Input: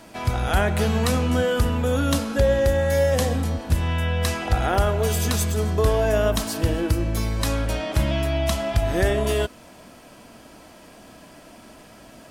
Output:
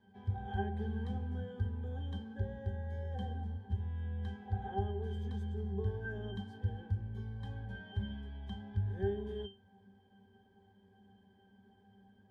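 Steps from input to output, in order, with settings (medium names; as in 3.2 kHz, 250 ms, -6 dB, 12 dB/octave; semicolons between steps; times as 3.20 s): pitch-class resonator G, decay 0.26 s; trim -3 dB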